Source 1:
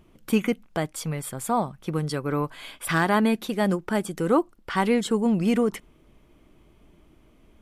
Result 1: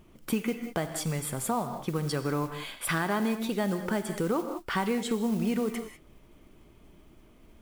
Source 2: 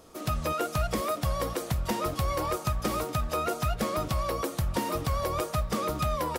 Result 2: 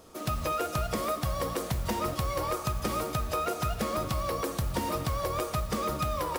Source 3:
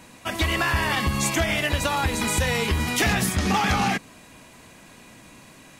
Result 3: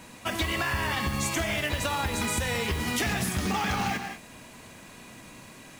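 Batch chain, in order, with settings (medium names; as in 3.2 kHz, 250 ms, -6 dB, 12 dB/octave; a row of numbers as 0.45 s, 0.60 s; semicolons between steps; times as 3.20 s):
gated-style reverb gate 220 ms flat, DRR 9 dB; modulation noise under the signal 22 dB; compression 4:1, threshold -26 dBFS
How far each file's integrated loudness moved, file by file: -5.0 LU, -1.0 LU, -5.5 LU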